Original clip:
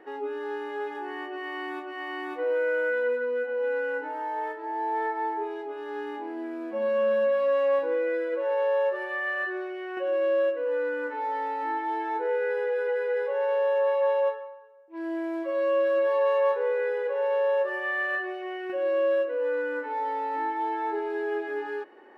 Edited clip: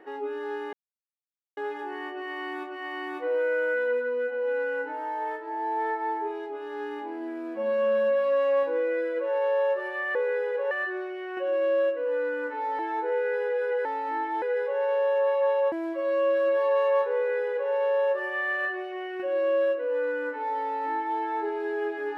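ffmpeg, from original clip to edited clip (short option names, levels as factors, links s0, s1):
-filter_complex "[0:a]asplit=8[s0][s1][s2][s3][s4][s5][s6][s7];[s0]atrim=end=0.73,asetpts=PTS-STARTPTS,afade=t=out:st=0.726:d=0.004:c=hsin,apad=pad_dur=0.84[s8];[s1]atrim=start=0.73:end=9.312,asetpts=PTS-STARTPTS,afade=t=in:d=0.004:c=hsin[s9];[s2]atrim=start=16.658:end=17.222[s10];[s3]atrim=start=9.308:end=11.392[s11];[s4]atrim=start=11.958:end=13.022[s12];[s5]atrim=start=11.388:end=11.962[s13];[s6]atrim=start=13.018:end=14.322[s14];[s7]atrim=start=15.218[s15];[s8][s9]concat=n=2:v=0:a=1[s16];[s16][s10]acrossfade=d=0.004:c1=hsin:c2=hsin[s17];[s17][s11]acrossfade=d=0.004:c1=hsin:c2=hsin[s18];[s18][s12]acrossfade=d=0.004:c1=hsin:c2=hsin[s19];[s19][s13]acrossfade=d=0.004:c1=hsin:c2=hsin[s20];[s20][s14]acrossfade=d=0.004:c1=hsin:c2=hsin[s21];[s21][s15]acrossfade=d=0.004:c1=hsin:c2=hsin"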